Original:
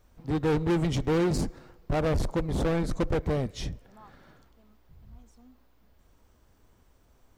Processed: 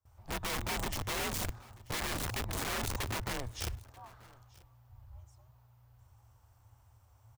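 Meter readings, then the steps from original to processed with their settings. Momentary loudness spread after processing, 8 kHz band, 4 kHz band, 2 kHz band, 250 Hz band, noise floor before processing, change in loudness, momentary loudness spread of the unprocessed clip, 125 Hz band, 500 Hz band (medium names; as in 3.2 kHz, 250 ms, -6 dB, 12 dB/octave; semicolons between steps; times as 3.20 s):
19 LU, +5.5 dB, +2.5 dB, +0.5 dB, -15.5 dB, -63 dBFS, -8.0 dB, 10 LU, -11.0 dB, -14.5 dB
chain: graphic EQ 125/250/500/1000/2000/4000 Hz -9/-10/-12/+6/-5/-6 dB; integer overflow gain 30.5 dB; frequency shift -120 Hz; gate with hold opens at -56 dBFS; delay 936 ms -23.5 dB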